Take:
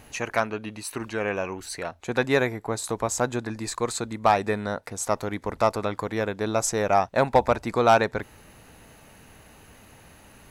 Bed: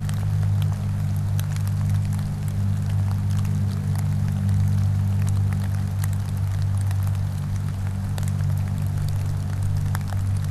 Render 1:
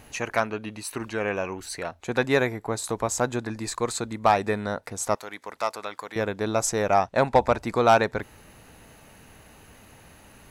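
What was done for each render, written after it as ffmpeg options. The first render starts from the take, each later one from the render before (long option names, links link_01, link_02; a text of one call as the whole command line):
ffmpeg -i in.wav -filter_complex "[0:a]asettb=1/sr,asplit=3[link_01][link_02][link_03];[link_01]atrim=end=5.154[link_04];[link_02]atrim=start=5.15:end=6.16,asetpts=PTS-STARTPTS,afade=type=in:duration=0.004:curve=qsin,afade=type=out:start_time=1.006:duration=0.004:curve=qsin,highpass=frequency=1300:poles=1[link_05];[link_03]atrim=start=6.156[link_06];[link_04][link_05]acrossfade=duration=0.004:curve1=hsin:curve2=qsin[link_07];[link_07][link_06]acrossfade=duration=0.004:curve1=qsin:curve2=hsin,asettb=1/sr,asplit=3[link_08][link_09][link_10];[link_08]atrim=end=6.944[link_11];[link_09]atrim=start=6.94:end=7.58,asetpts=PTS-STARTPTS,afade=type=in:duration=0.004:curve=qsin,afade=type=out:start_time=0.636:duration=0.004:curve=qsin,lowpass=11000[link_12];[link_10]atrim=start=7.576[link_13];[link_11][link_12]acrossfade=duration=0.004:curve1=hsin:curve2=qsin[link_14];[link_14][link_13]acrossfade=duration=0.004:curve1=qsin:curve2=hsin" out.wav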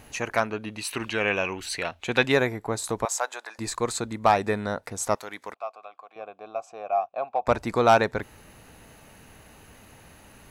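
ffmpeg -i in.wav -filter_complex "[0:a]asettb=1/sr,asplit=3[link_01][link_02][link_03];[link_01]atrim=end=0.784[link_04];[link_02]atrim=start=0.78:end=2.32,asetpts=PTS-STARTPTS,afade=type=in:duration=0.004:curve=qsin,afade=type=out:start_time=1.536:duration=0.004:curve=qsin,equalizer=frequency=2900:width_type=o:width=1.1:gain=11.5[link_05];[link_03]atrim=start=2.316[link_06];[link_04][link_05]acrossfade=duration=0.004:curve1=hsin:curve2=qsin[link_07];[link_07][link_06]acrossfade=duration=0.004:curve1=qsin:curve2=hsin,asettb=1/sr,asplit=3[link_08][link_09][link_10];[link_08]atrim=end=3.054[link_11];[link_09]atrim=start=3.05:end=3.59,asetpts=PTS-STARTPTS,afade=type=in:duration=0.004:curve=qsin,afade=type=out:start_time=0.536:duration=0.004:curve=qsin,highpass=frequency=640:width=0.5412,highpass=frequency=640:width=1.3066[link_12];[link_10]atrim=start=3.586[link_13];[link_11][link_12]acrossfade=duration=0.004:curve1=hsin:curve2=qsin[link_14];[link_14][link_13]acrossfade=duration=0.004:curve1=qsin:curve2=hsin,asettb=1/sr,asplit=3[link_15][link_16][link_17];[link_15]atrim=end=5.544[link_18];[link_16]atrim=start=5.54:end=7.47,asetpts=PTS-STARTPTS,afade=type=in:duration=0.004:curve=qsin,afade=type=out:start_time=1.926:duration=0.004:curve=qsin,asplit=3[link_19][link_20][link_21];[link_19]bandpass=frequency=730:width_type=q:width=8,volume=0dB[link_22];[link_20]bandpass=frequency=1090:width_type=q:width=8,volume=-6dB[link_23];[link_21]bandpass=frequency=2440:width_type=q:width=8,volume=-9dB[link_24];[link_22][link_23][link_24]amix=inputs=3:normalize=0[link_25];[link_17]atrim=start=7.466[link_26];[link_18][link_25]acrossfade=duration=0.004:curve1=hsin:curve2=qsin[link_27];[link_27][link_26]acrossfade=duration=0.004:curve1=qsin:curve2=hsin" out.wav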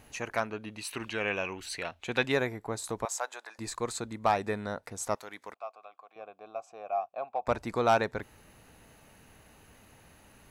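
ffmpeg -i in.wav -af "volume=-6.5dB" out.wav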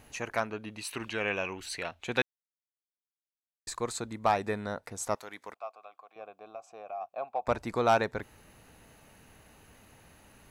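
ffmpeg -i in.wav -filter_complex "[0:a]asplit=3[link_01][link_02][link_03];[link_01]afade=type=out:start_time=6.39:duration=0.02[link_04];[link_02]acompressor=threshold=-41dB:ratio=2:attack=3.2:release=140:knee=1:detection=peak,afade=type=in:start_time=6.39:duration=0.02,afade=type=out:start_time=7:duration=0.02[link_05];[link_03]afade=type=in:start_time=7:duration=0.02[link_06];[link_04][link_05][link_06]amix=inputs=3:normalize=0,asplit=3[link_07][link_08][link_09];[link_07]atrim=end=2.22,asetpts=PTS-STARTPTS,afade=type=out:start_time=2.216:duration=0.004:curve=hsin[link_10];[link_08]atrim=start=2.22:end=3.67,asetpts=PTS-STARTPTS,volume=0[link_11];[link_09]atrim=start=3.67,asetpts=PTS-STARTPTS,afade=type=in:duration=0.004:curve=hsin[link_12];[link_10][link_11][link_12]concat=n=3:v=0:a=1" out.wav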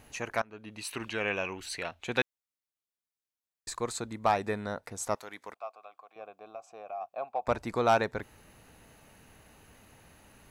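ffmpeg -i in.wav -filter_complex "[0:a]asplit=2[link_01][link_02];[link_01]atrim=end=0.42,asetpts=PTS-STARTPTS,afade=type=out:start_time=0.416:duration=0.004:curve=hsin:silence=0.0668344[link_03];[link_02]atrim=start=0.42,asetpts=PTS-STARTPTS,afade=type=in:duration=0.41:silence=0.0668344[link_04];[link_03][link_04]concat=n=2:v=0:a=1" out.wav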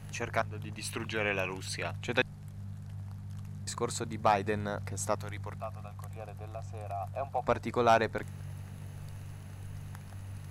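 ffmpeg -i in.wav -i bed.wav -filter_complex "[1:a]volume=-20dB[link_01];[0:a][link_01]amix=inputs=2:normalize=0" out.wav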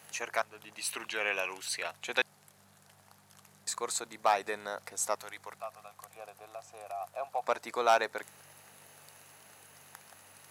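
ffmpeg -i in.wav -af "highpass=520,highshelf=frequency=5600:gain=7" out.wav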